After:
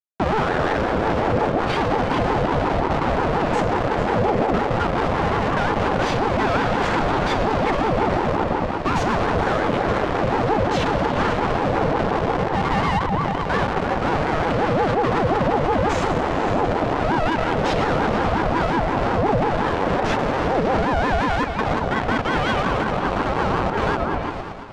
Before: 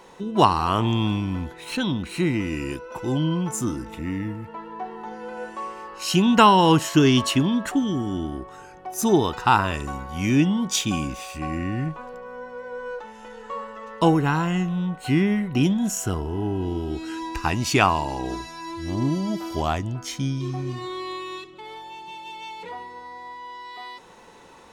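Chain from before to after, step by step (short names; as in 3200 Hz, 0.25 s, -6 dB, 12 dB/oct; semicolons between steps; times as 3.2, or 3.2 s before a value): in parallel at +1 dB: compressor 6:1, threshold -30 dBFS, peak gain reduction 19 dB; on the sum: Schmitt trigger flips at -27.5 dBFS; HPF 100 Hz 24 dB/oct; resonator 190 Hz, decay 1.1 s, mix 80%; sample gate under -36 dBFS; tape spacing loss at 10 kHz 29 dB; on a send: repeats that get brighter 0.113 s, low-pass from 200 Hz, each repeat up 2 oct, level -3 dB; on the sum: maximiser +31.5 dB; ring modulator with a swept carrier 480 Hz, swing 40%, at 5.6 Hz; gain -8 dB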